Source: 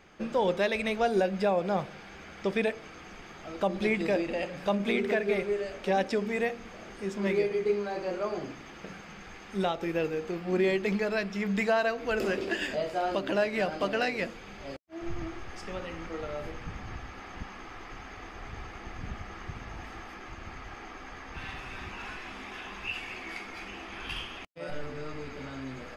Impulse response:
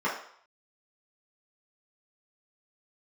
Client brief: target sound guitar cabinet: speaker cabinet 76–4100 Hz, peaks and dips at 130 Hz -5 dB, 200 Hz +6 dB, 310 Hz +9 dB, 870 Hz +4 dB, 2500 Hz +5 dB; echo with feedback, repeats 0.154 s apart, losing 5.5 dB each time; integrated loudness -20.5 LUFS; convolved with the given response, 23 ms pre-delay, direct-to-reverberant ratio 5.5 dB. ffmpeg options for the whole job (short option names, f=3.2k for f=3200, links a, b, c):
-filter_complex "[0:a]aecho=1:1:154|308|462|616|770|924|1078:0.531|0.281|0.149|0.079|0.0419|0.0222|0.0118,asplit=2[a][b];[1:a]atrim=start_sample=2205,adelay=23[c];[b][c]afir=irnorm=-1:irlink=0,volume=-17.5dB[d];[a][d]amix=inputs=2:normalize=0,highpass=76,equalizer=f=130:t=q:w=4:g=-5,equalizer=f=200:t=q:w=4:g=6,equalizer=f=310:t=q:w=4:g=9,equalizer=f=870:t=q:w=4:g=4,equalizer=f=2.5k:t=q:w=4:g=5,lowpass=f=4.1k:w=0.5412,lowpass=f=4.1k:w=1.3066,volume=6dB"